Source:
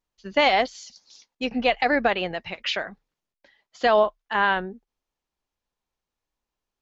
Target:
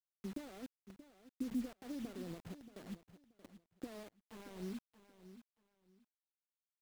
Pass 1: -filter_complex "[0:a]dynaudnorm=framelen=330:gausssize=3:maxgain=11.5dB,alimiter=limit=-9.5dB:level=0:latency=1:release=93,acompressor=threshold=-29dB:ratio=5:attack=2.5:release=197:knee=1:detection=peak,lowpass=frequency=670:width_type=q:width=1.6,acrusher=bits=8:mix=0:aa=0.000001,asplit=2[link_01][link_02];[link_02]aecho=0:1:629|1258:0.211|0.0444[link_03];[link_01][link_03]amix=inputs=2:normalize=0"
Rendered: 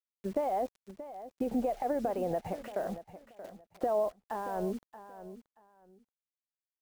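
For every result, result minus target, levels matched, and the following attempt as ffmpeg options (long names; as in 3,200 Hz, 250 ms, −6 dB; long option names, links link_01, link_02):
downward compressor: peak gain reduction −9.5 dB; 500 Hz band +8.0 dB
-filter_complex "[0:a]dynaudnorm=framelen=330:gausssize=3:maxgain=11.5dB,alimiter=limit=-9.5dB:level=0:latency=1:release=93,acompressor=threshold=-41dB:ratio=5:attack=2.5:release=197:knee=1:detection=peak,lowpass=frequency=670:width_type=q:width=1.6,acrusher=bits=8:mix=0:aa=0.000001,asplit=2[link_01][link_02];[link_02]aecho=0:1:629|1258:0.211|0.0444[link_03];[link_01][link_03]amix=inputs=2:normalize=0"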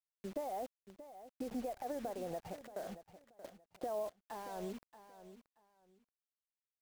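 500 Hz band +8.0 dB
-filter_complex "[0:a]dynaudnorm=framelen=330:gausssize=3:maxgain=11.5dB,alimiter=limit=-9.5dB:level=0:latency=1:release=93,acompressor=threshold=-41dB:ratio=5:attack=2.5:release=197:knee=1:detection=peak,lowpass=frequency=280:width_type=q:width=1.6,acrusher=bits=8:mix=0:aa=0.000001,asplit=2[link_01][link_02];[link_02]aecho=0:1:629|1258:0.211|0.0444[link_03];[link_01][link_03]amix=inputs=2:normalize=0"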